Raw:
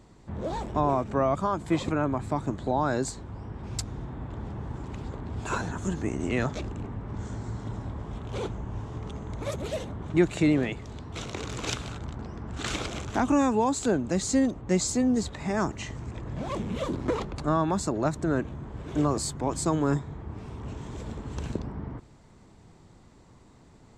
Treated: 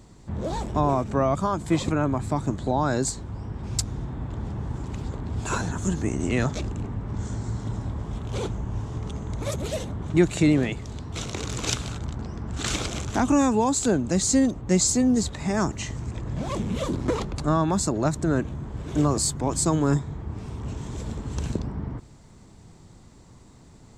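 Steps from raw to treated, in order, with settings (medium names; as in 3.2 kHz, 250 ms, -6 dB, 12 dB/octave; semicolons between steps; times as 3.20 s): tone controls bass +4 dB, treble +7 dB; trim +1.5 dB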